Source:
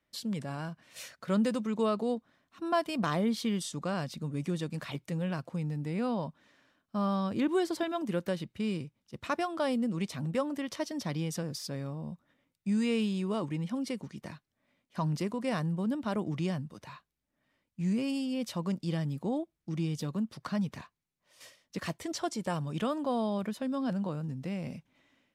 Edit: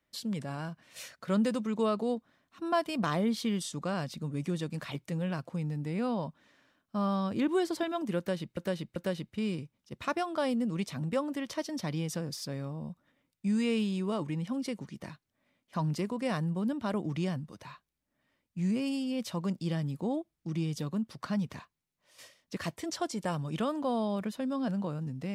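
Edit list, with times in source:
8.18–8.57 loop, 3 plays

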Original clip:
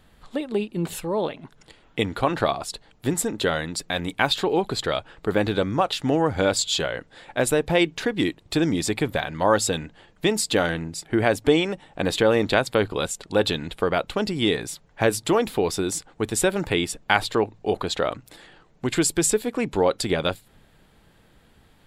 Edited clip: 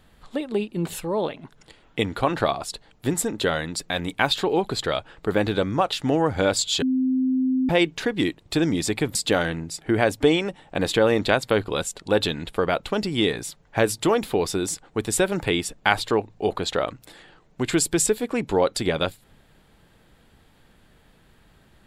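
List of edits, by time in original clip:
6.82–7.69 bleep 259 Hz -18.5 dBFS
9.15–10.39 cut

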